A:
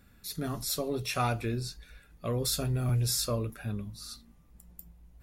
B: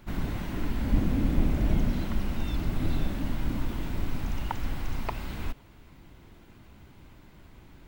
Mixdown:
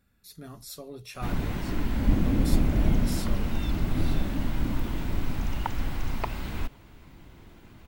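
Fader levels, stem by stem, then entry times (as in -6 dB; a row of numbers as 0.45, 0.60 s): -9.5, +2.0 dB; 0.00, 1.15 s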